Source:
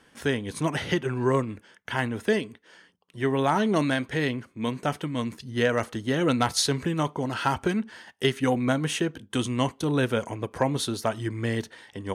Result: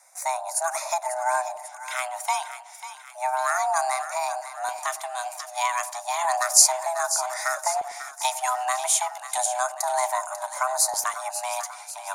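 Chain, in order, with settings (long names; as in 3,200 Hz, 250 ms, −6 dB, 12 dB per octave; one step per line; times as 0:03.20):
high shelf with overshoot 4,400 Hz +13 dB, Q 1.5
frequency shifter +500 Hz
auto-filter notch square 0.32 Hz 490–3,100 Hz
echo with a time of its own for lows and highs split 940 Hz, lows 100 ms, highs 543 ms, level −11 dB
level −1 dB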